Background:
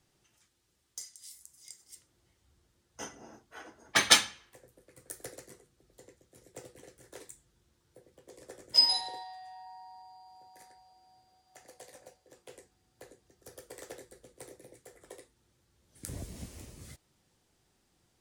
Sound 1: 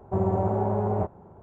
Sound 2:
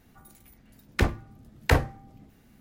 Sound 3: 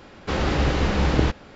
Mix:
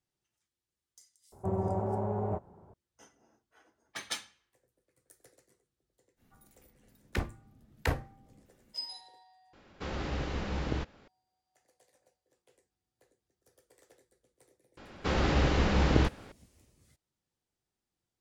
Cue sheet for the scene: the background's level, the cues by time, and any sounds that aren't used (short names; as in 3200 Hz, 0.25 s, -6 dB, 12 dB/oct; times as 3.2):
background -16.5 dB
1.32 add 1 -7 dB
6.16 add 2 -9.5 dB, fades 0.05 s
9.53 replace with 3 -13.5 dB
14.77 add 3 -5 dB